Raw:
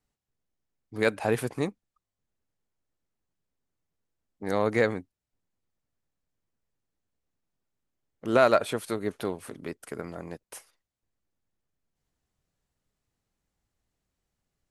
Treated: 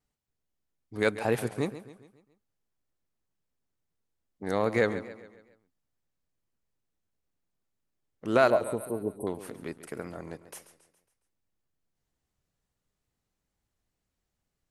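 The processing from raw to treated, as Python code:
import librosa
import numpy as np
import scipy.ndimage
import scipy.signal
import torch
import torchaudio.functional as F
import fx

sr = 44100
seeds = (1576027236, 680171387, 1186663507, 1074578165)

y = fx.brickwall_bandstop(x, sr, low_hz=1100.0, high_hz=8100.0, at=(8.5, 9.27))
y = fx.echo_feedback(y, sr, ms=138, feedback_pct=48, wet_db=-14.0)
y = fx.wow_flutter(y, sr, seeds[0], rate_hz=2.1, depth_cents=51.0)
y = F.gain(torch.from_numpy(y), -1.5).numpy()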